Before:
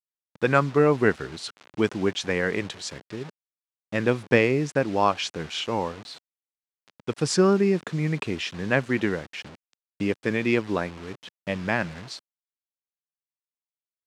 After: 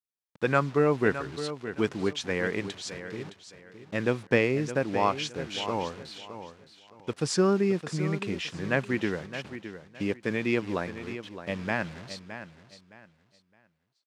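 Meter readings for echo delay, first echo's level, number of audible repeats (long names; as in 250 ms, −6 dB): 615 ms, −11.5 dB, 3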